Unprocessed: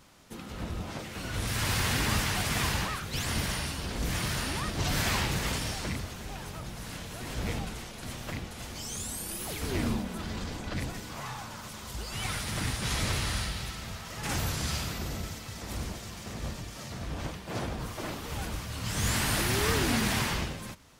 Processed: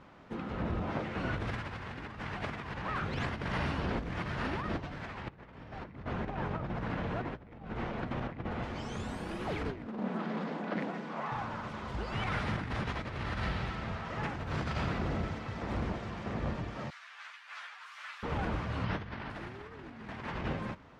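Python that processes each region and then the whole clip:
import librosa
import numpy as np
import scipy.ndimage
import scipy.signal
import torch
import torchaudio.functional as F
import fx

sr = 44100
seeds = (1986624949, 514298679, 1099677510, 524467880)

y = fx.chain(x, sr, fx.lowpass(hz=2400.0, slope=6),
    fx.over_compress(threshold_db=-41.0, ratio=-0.5), at=(5.28, 8.64))
y = fx.chain(y, sr, fx.cheby_ripple_highpass(hz=150.0, ripple_db=3),
    fx.doppler_dist(depth_ms=0.45), at=(9.87, 11.32))
y = fx.chain(y, sr, fx.highpass(hz=1400.0, slope=24),
    fx.high_shelf(hz=6000.0, db=10.0),
    fx.ensemble(), at=(16.9, 18.23))
y = fx.chain(y, sr, fx.savgol(points=15),
    fx.doubler(ms=40.0, db=-12.5), at=(18.84, 19.3))
y = scipy.signal.sosfilt(scipy.signal.butter(2, 1800.0, 'lowpass', fs=sr, output='sos'), y)
y = fx.low_shelf(y, sr, hz=80.0, db=-8.5)
y = fx.over_compress(y, sr, threshold_db=-37.0, ratio=-0.5)
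y = y * librosa.db_to_amplitude(2.5)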